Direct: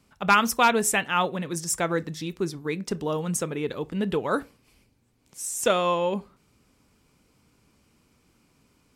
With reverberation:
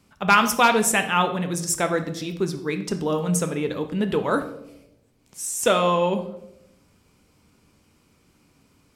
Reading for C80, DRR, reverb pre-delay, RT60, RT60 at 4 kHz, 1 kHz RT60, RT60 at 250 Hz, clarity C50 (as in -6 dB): 14.5 dB, 7.5 dB, 4 ms, 0.85 s, 0.65 s, 0.70 s, 1.0 s, 11.0 dB